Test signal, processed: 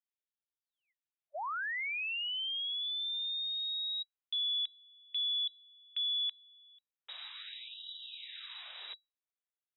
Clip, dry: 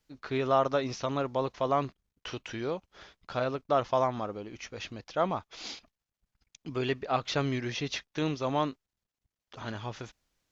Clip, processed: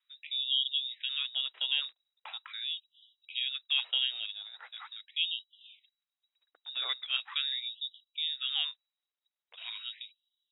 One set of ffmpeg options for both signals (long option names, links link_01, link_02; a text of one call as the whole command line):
ffmpeg -i in.wav -af "lowpass=frequency=3300:width_type=q:width=0.5098,lowpass=frequency=3300:width_type=q:width=0.6013,lowpass=frequency=3300:width_type=q:width=0.9,lowpass=frequency=3300:width_type=q:width=2.563,afreqshift=-3900,afftfilt=real='re*gte(b*sr/1024,250*pow(2900/250,0.5+0.5*sin(2*PI*0.41*pts/sr)))':imag='im*gte(b*sr/1024,250*pow(2900/250,0.5+0.5*sin(2*PI*0.41*pts/sr)))':win_size=1024:overlap=0.75,volume=-4dB" out.wav